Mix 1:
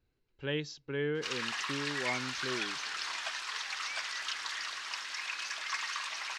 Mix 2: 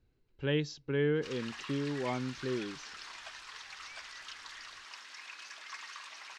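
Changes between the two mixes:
background −10.0 dB
master: add low-shelf EQ 490 Hz +6.5 dB

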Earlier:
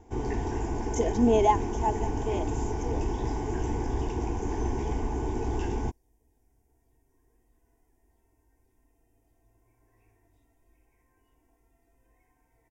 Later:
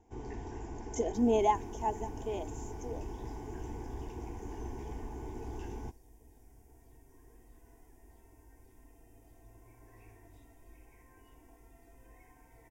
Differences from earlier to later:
speech −5.0 dB
first sound −12.0 dB
second sound +9.5 dB

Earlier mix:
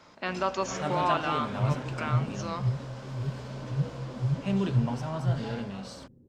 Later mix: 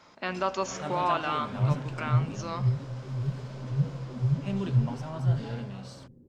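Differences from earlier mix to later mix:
first sound −4.0 dB
second sound: send +10.0 dB

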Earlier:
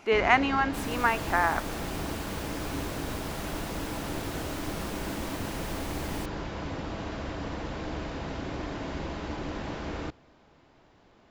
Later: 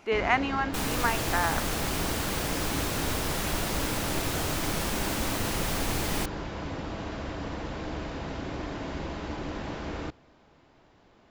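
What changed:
speech −3.0 dB
second sound +9.5 dB

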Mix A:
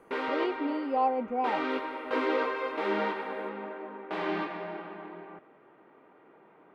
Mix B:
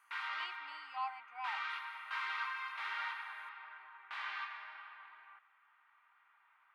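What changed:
background −3.5 dB
master: add inverse Chebyshev high-pass filter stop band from 560 Hz, stop band 40 dB

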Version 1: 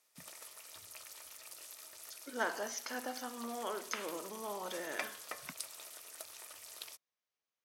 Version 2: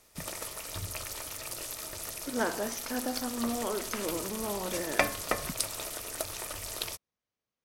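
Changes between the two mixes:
background +11.5 dB
master: remove high-pass filter 1,000 Hz 6 dB per octave

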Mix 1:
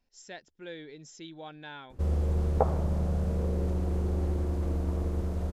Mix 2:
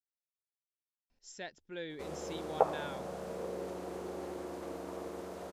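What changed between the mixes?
speech: entry +1.10 s
background: add high-pass filter 430 Hz 12 dB per octave

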